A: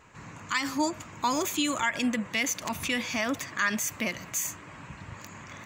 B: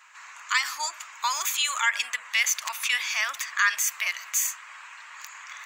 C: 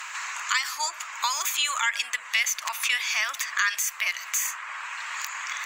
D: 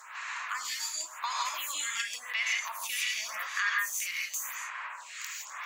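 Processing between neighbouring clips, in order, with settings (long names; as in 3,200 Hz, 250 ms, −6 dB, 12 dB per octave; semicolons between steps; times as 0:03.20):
high-pass filter 1,100 Hz 24 dB per octave; level +5.5 dB
harmonic generator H 4 −43 dB, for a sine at −10 dBFS; multiband upward and downward compressor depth 70%
reverb whose tail is shaped and stops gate 190 ms rising, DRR −2.5 dB; phaser with staggered stages 0.91 Hz; level −7 dB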